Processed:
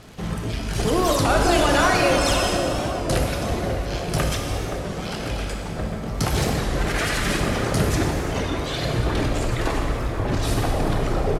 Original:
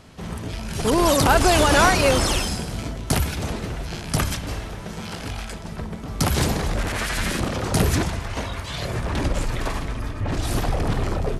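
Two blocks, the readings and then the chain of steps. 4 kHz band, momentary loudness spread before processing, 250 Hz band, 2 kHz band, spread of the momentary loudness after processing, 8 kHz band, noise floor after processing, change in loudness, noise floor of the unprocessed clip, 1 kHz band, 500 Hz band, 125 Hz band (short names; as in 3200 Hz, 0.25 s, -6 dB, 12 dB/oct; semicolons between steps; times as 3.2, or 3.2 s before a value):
-0.5 dB, 16 LU, +0.5 dB, 0.0 dB, 11 LU, -2.0 dB, -30 dBFS, 0.0 dB, -34 dBFS, -0.5 dB, +1.5 dB, +0.5 dB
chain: median filter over 3 samples; notch 960 Hz, Q 20; reverb removal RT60 2 s; in parallel at -1 dB: negative-ratio compressor -27 dBFS; on the sum: crackle 100/s -30 dBFS; on a send: narrowing echo 0.533 s, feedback 77%, band-pass 470 Hz, level -5 dB; on the sum: plate-style reverb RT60 3 s, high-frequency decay 0.8×, DRR 0 dB; downsampling 32000 Hz; record warp 33 1/3 rpm, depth 100 cents; gain -4.5 dB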